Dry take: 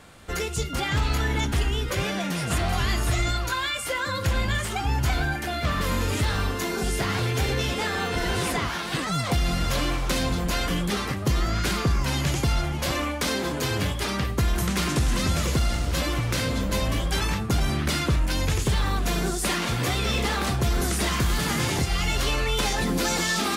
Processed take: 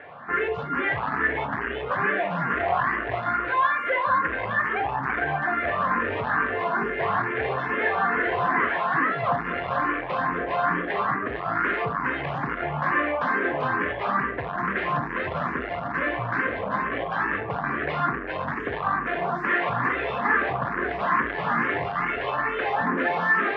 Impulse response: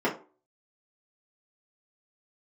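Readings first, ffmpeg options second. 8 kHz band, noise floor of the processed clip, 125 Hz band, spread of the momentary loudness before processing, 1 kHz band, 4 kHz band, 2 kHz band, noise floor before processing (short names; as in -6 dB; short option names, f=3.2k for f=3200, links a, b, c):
under -35 dB, -32 dBFS, -11.0 dB, 3 LU, +6.5 dB, -14.5 dB, +5.5 dB, -30 dBFS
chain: -filter_complex "[0:a]asoftclip=type=tanh:threshold=-27.5dB,highpass=200,equalizer=f=210:t=q:w=4:g=-6,equalizer=f=340:t=q:w=4:g=-5,equalizer=f=690:t=q:w=4:g=4,equalizer=f=1.1k:t=q:w=4:g=8,equalizer=f=1.7k:t=q:w=4:g=9,lowpass=f=2.2k:w=0.5412,lowpass=f=2.2k:w=1.3066,asplit=2[a][b];[1:a]atrim=start_sample=2205,adelay=37[c];[b][c]afir=irnorm=-1:irlink=0,volume=-20dB[d];[a][d]amix=inputs=2:normalize=0,asplit=2[e][f];[f]afreqshift=2.3[g];[e][g]amix=inputs=2:normalize=1,volume=8.5dB"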